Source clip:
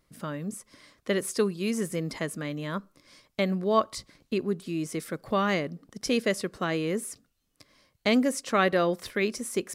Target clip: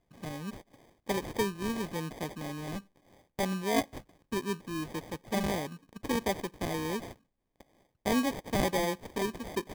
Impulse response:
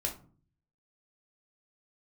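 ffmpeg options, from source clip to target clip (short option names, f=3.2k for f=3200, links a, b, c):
-af "acrusher=samples=32:mix=1:aa=0.000001,volume=-5dB"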